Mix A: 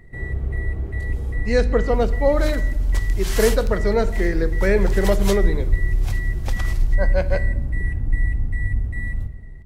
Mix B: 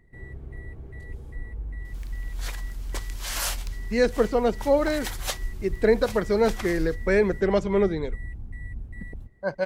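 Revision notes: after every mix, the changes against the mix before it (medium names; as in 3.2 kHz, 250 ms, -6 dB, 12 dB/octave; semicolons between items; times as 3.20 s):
speech: entry +2.45 s; first sound -9.0 dB; reverb: off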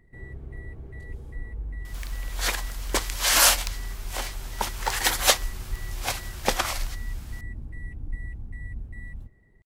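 speech: muted; second sound +11.5 dB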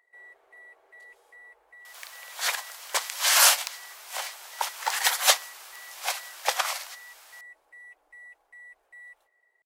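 master: add inverse Chebyshev high-pass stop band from 230 Hz, stop band 50 dB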